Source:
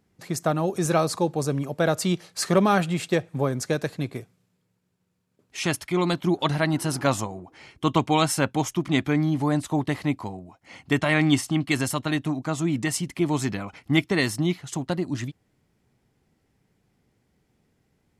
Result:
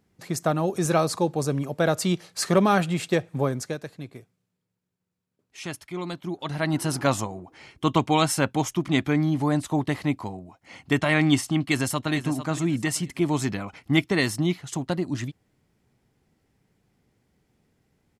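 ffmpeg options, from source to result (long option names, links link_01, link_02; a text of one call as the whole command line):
ffmpeg -i in.wav -filter_complex "[0:a]asplit=2[link_01][link_02];[link_02]afade=type=in:start_time=11.61:duration=0.01,afade=type=out:start_time=12.13:duration=0.01,aecho=0:1:450|900|1350:0.281838|0.0845515|0.0253654[link_03];[link_01][link_03]amix=inputs=2:normalize=0,asplit=3[link_04][link_05][link_06];[link_04]atrim=end=3.79,asetpts=PTS-STARTPTS,afade=type=out:start_time=3.48:duration=0.31:silence=0.354813[link_07];[link_05]atrim=start=3.79:end=6.45,asetpts=PTS-STARTPTS,volume=-9dB[link_08];[link_06]atrim=start=6.45,asetpts=PTS-STARTPTS,afade=type=in:duration=0.31:silence=0.354813[link_09];[link_07][link_08][link_09]concat=n=3:v=0:a=1" out.wav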